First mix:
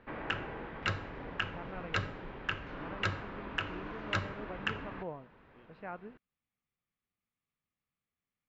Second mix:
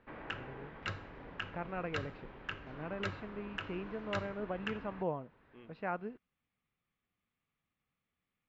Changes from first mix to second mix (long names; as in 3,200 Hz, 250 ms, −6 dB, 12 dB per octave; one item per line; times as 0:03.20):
speech +6.0 dB
background −6.5 dB